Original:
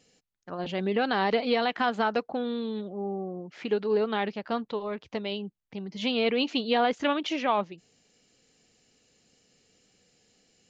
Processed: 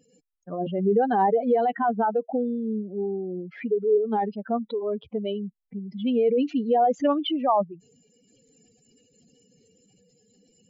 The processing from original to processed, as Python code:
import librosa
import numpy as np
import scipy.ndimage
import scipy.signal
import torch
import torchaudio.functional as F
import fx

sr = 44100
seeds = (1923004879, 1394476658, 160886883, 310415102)

y = fx.spec_expand(x, sr, power=2.8)
y = fx.am_noise(y, sr, seeds[0], hz=5.7, depth_pct=55)
y = y * librosa.db_to_amplitude(7.5)